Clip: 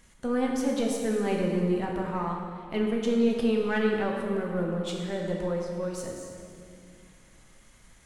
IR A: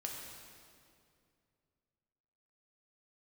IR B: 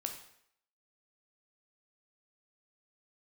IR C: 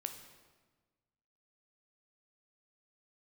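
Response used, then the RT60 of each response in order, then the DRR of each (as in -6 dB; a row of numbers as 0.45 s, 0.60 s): A; 2.4 s, 0.70 s, 1.4 s; -1.0 dB, 3.5 dB, 6.0 dB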